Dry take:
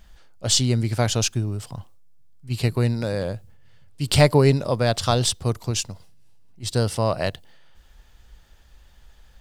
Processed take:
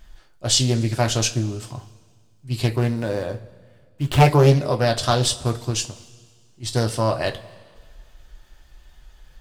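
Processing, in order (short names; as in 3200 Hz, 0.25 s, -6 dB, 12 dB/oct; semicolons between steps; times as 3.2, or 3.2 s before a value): 2.76–4.26 median filter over 9 samples; two-slope reverb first 0.2 s, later 1.8 s, from -21 dB, DRR 3 dB; Doppler distortion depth 0.48 ms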